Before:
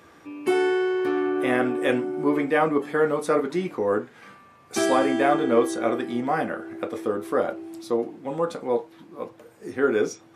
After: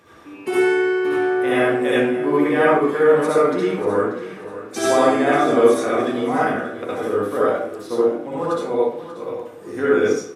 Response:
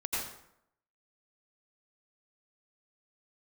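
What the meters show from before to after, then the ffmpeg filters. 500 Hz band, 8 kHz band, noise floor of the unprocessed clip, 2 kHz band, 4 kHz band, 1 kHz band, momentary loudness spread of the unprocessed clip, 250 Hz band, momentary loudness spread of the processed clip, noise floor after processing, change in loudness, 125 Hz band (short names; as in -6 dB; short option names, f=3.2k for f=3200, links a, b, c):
+6.0 dB, +4.0 dB, -52 dBFS, +6.0 dB, +4.5 dB, +5.0 dB, 13 LU, +4.0 dB, 14 LU, -38 dBFS, +5.5 dB, +5.0 dB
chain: -filter_complex "[0:a]aecho=1:1:586|1172|1758:0.2|0.0638|0.0204[a];[1:a]atrim=start_sample=2205,asetrate=61740,aresample=44100[b];[a][b]afir=irnorm=-1:irlink=0,volume=3dB"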